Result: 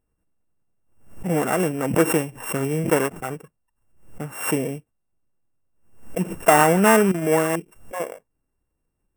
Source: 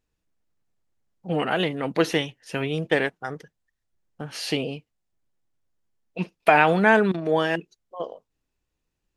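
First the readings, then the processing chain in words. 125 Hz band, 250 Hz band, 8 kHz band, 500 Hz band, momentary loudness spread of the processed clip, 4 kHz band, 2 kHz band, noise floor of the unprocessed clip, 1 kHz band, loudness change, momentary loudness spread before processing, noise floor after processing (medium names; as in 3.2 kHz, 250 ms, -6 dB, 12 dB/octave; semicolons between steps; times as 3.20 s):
+4.0 dB, +4.0 dB, +15.0 dB, +3.0 dB, 18 LU, -4.5 dB, -2.0 dB, -80 dBFS, +2.0 dB, +2.0 dB, 19 LU, -76 dBFS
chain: sorted samples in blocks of 16 samples; FFT filter 1.5 kHz 0 dB, 4.5 kHz -21 dB, 7.6 kHz -2 dB; swell ahead of each attack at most 98 dB/s; trim +3.5 dB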